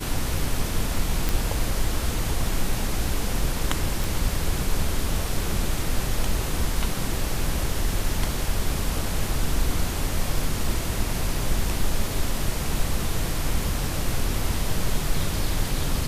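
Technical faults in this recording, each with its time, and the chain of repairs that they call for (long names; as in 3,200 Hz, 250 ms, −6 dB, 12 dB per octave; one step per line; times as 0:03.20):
0:01.29: click
0:04.04: click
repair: click removal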